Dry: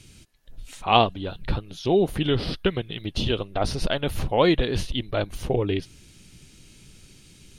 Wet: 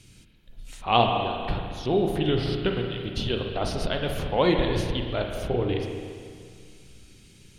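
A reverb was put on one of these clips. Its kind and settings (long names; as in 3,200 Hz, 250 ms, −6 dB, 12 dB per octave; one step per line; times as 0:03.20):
spring reverb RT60 2.1 s, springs 33/50 ms, chirp 30 ms, DRR 2 dB
level −3.5 dB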